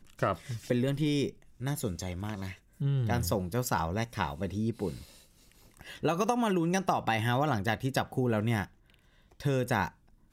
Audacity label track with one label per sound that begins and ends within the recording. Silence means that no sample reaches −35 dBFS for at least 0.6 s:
5.810000	8.640000	sound